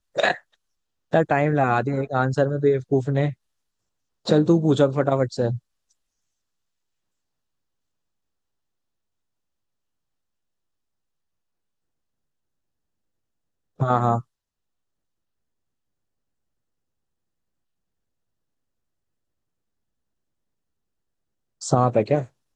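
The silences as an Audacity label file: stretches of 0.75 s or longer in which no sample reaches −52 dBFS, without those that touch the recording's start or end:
3.340000	4.250000	silence
5.910000	13.790000	silence
14.220000	21.610000	silence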